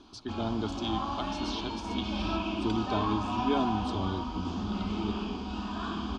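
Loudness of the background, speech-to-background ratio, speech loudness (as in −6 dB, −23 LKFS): −34.0 LKFS, −1.5 dB, −35.5 LKFS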